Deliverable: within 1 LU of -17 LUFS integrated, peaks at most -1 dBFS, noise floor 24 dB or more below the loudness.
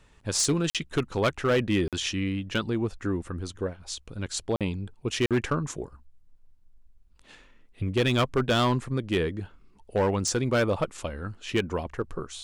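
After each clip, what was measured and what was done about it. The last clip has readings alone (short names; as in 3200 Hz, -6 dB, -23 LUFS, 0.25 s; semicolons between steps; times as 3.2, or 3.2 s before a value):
clipped 1.3%; flat tops at -18.0 dBFS; dropouts 4; longest dropout 47 ms; loudness -28.0 LUFS; peak -18.0 dBFS; loudness target -17.0 LUFS
-> clip repair -18 dBFS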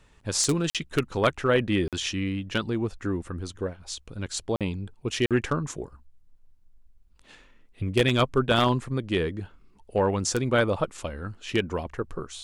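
clipped 0.0%; dropouts 4; longest dropout 47 ms
-> interpolate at 0.7/1.88/4.56/5.26, 47 ms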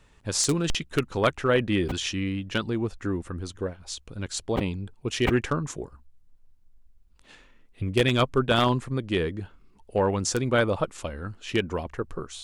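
dropouts 0; loudness -27.0 LUFS; peak -9.0 dBFS; loudness target -17.0 LUFS
-> gain +10 dB; limiter -1 dBFS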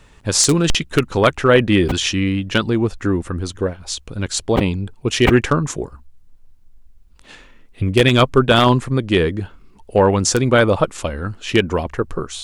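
loudness -17.5 LUFS; peak -1.0 dBFS; noise floor -47 dBFS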